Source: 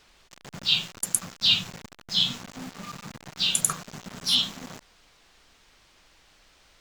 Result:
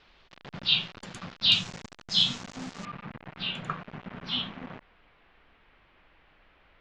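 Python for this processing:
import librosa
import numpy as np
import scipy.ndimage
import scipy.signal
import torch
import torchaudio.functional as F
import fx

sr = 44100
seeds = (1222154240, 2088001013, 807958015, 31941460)

y = fx.lowpass(x, sr, hz=fx.steps((0.0, 4100.0), (1.52, 7400.0), (2.85, 2700.0)), slope=24)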